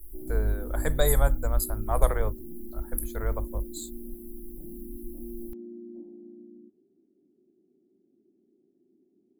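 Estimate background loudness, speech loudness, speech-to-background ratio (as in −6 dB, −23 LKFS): −43.5 LKFS, −29.5 LKFS, 14.0 dB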